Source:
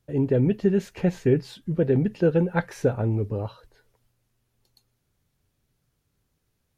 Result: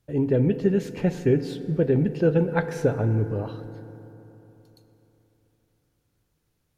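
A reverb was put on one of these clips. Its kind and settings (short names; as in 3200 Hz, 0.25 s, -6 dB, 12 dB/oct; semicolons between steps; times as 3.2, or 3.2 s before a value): FDN reverb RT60 3.6 s, high-frequency decay 0.4×, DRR 10.5 dB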